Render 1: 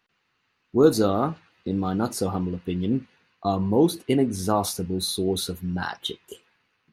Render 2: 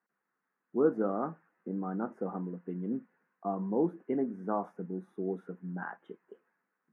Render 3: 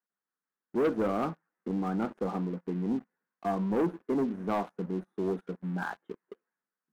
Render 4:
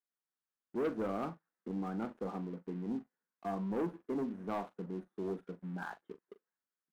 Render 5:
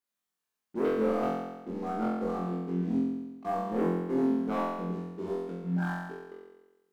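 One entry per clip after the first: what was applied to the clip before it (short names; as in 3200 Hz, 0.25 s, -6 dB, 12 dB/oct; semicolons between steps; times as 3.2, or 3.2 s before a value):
elliptic band-pass 180–1700 Hz, stop band 40 dB; gain -9 dB
sample leveller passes 3; gain -6 dB
doubler 41 ms -14 dB; gain -7.5 dB
flutter echo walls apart 3.9 m, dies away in 1.1 s; gain +1.5 dB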